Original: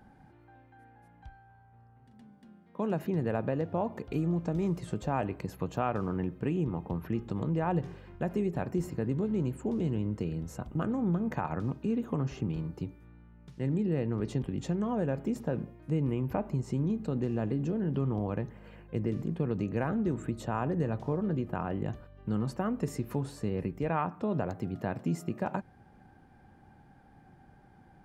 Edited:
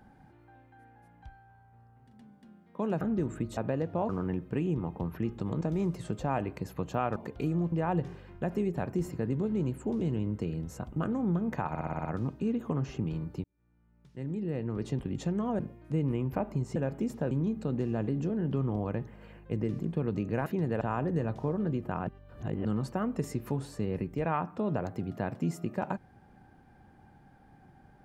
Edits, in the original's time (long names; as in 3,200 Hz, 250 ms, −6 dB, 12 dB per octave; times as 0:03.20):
0:03.01–0:03.36: swap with 0:19.89–0:20.45
0:03.88–0:04.44: swap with 0:05.99–0:07.51
0:11.48: stutter 0.06 s, 7 plays
0:12.87–0:14.50: fade in
0:15.02–0:15.57: move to 0:16.74
0:21.71–0:22.29: reverse